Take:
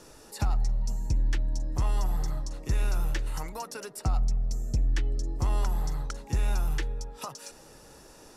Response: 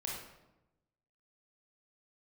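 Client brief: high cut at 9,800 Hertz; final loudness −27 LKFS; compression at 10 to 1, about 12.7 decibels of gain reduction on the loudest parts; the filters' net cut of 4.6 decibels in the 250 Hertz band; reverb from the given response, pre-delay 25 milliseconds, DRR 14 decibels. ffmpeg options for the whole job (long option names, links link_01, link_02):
-filter_complex "[0:a]lowpass=9800,equalizer=frequency=250:width_type=o:gain=-7.5,acompressor=threshold=-35dB:ratio=10,asplit=2[link_01][link_02];[1:a]atrim=start_sample=2205,adelay=25[link_03];[link_02][link_03]afir=irnorm=-1:irlink=0,volume=-15dB[link_04];[link_01][link_04]amix=inputs=2:normalize=0,volume=14.5dB"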